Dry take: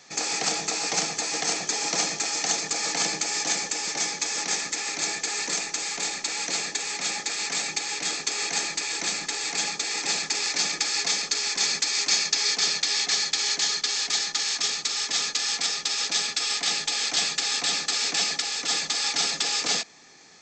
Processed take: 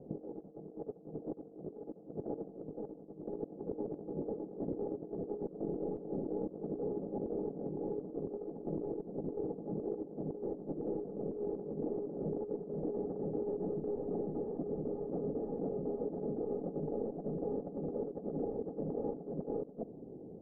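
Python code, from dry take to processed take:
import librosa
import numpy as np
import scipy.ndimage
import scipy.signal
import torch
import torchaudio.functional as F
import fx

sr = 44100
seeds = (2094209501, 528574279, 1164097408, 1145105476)

y = scipy.signal.sosfilt(scipy.signal.butter(6, 530.0, 'lowpass', fs=sr, output='sos'), x)
y = fx.over_compress(y, sr, threshold_db=-48.0, ratio=-0.5)
y = y * 10.0 ** (9.0 / 20.0)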